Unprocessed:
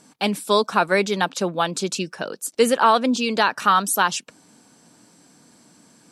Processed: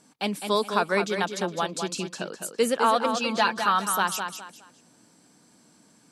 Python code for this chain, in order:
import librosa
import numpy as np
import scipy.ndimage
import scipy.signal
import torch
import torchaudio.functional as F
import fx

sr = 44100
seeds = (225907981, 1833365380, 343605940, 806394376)

p1 = fx.comb(x, sr, ms=5.8, depth=0.67, at=(2.95, 3.64))
p2 = p1 + fx.echo_feedback(p1, sr, ms=207, feedback_pct=28, wet_db=-7, dry=0)
y = p2 * 10.0 ** (-6.0 / 20.0)